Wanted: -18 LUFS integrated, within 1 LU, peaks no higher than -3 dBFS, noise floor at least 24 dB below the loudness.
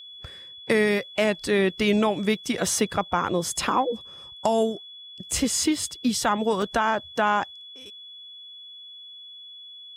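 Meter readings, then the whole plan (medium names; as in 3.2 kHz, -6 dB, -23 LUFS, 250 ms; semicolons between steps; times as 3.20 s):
dropouts 1; longest dropout 3.0 ms; steady tone 3.4 kHz; tone level -41 dBFS; loudness -24.5 LUFS; peak level -8.0 dBFS; loudness target -18.0 LUFS
-> interpolate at 6.62 s, 3 ms; band-stop 3.4 kHz, Q 30; trim +6.5 dB; peak limiter -3 dBFS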